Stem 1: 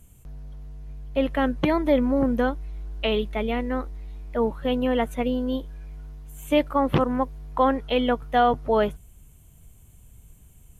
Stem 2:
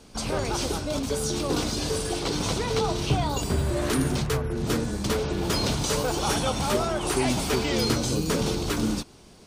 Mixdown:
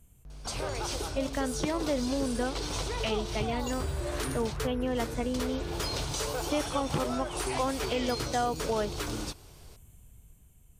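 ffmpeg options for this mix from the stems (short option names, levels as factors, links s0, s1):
-filter_complex "[0:a]dynaudnorm=f=150:g=11:m=1.78,volume=0.447[s0];[1:a]equalizer=f=210:w=1.7:g=-12,adelay=300,volume=0.708[s1];[s0][s1]amix=inputs=2:normalize=0,acompressor=threshold=0.0282:ratio=2"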